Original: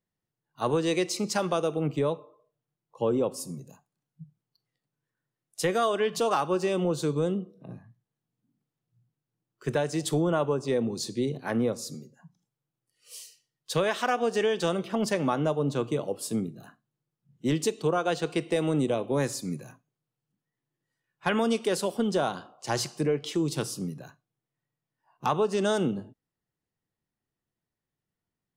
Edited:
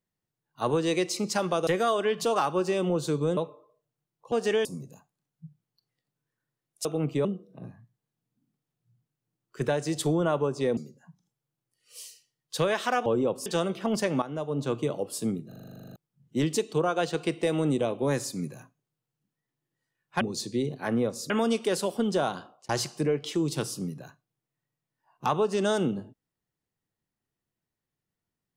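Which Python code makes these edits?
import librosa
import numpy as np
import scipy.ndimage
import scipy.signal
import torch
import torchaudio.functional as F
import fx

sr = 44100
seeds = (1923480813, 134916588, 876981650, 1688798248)

y = fx.edit(x, sr, fx.swap(start_s=1.67, length_s=0.4, other_s=5.62, other_length_s=1.7),
    fx.swap(start_s=3.02, length_s=0.4, other_s=14.22, other_length_s=0.33),
    fx.move(start_s=10.84, length_s=1.09, to_s=21.3),
    fx.fade_in_from(start_s=15.31, length_s=0.51, floor_db=-13.0),
    fx.stutter_over(start_s=16.57, slice_s=0.04, count=12),
    fx.fade_out_span(start_s=22.4, length_s=0.29, curve='qsin'), tone=tone)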